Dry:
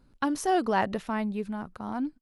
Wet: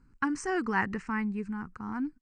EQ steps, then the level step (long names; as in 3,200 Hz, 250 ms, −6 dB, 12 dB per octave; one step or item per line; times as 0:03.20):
elliptic low-pass filter 8,300 Hz, stop band 40 dB
dynamic equaliser 2,000 Hz, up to +4 dB, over −48 dBFS, Q 2.1
phaser with its sweep stopped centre 1,500 Hz, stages 4
+1.5 dB